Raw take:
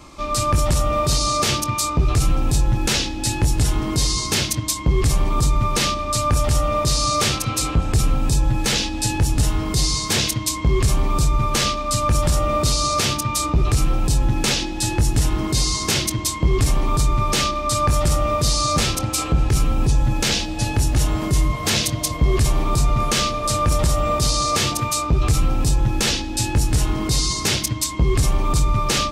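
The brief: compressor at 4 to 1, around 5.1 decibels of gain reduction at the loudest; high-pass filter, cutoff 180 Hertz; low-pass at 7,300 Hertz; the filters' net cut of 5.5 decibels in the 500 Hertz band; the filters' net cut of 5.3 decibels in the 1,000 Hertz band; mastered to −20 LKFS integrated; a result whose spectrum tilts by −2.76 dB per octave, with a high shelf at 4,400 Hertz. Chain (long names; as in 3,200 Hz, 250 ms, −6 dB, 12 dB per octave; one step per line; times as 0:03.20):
high-pass filter 180 Hz
low-pass filter 7,300 Hz
parametric band 500 Hz −5.5 dB
parametric band 1,000 Hz −6 dB
high-shelf EQ 4,400 Hz +3.5 dB
downward compressor 4 to 1, threshold −23 dBFS
level +6.5 dB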